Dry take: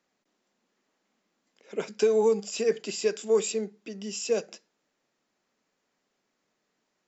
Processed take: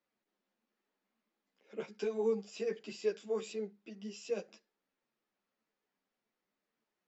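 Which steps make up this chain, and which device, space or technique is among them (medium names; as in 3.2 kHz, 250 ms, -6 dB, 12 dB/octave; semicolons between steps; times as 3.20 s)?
string-machine ensemble chorus (three-phase chorus; low-pass 4.4 kHz 12 dB/octave); trim -7 dB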